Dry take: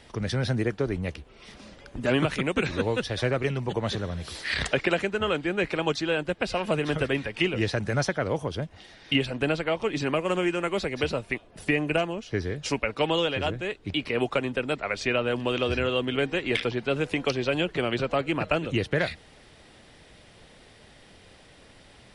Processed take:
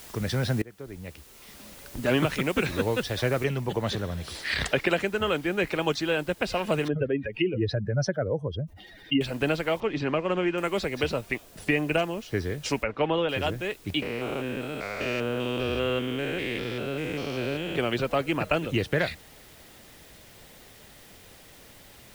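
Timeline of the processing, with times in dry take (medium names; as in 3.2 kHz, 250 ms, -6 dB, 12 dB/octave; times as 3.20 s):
0.62–2.07 s: fade in, from -23 dB
3.44 s: noise floor step -47 dB -55 dB
6.88–9.21 s: spectral contrast enhancement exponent 2.1
9.80–10.58 s: distance through air 160 m
12.83–13.29 s: low-pass 2.2 kHz
14.02–17.76 s: spectrogram pixelated in time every 200 ms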